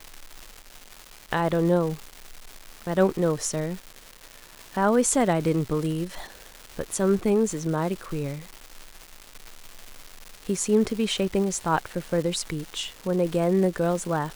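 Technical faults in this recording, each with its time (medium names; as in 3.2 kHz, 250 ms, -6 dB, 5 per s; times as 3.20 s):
crackle 500 per s -32 dBFS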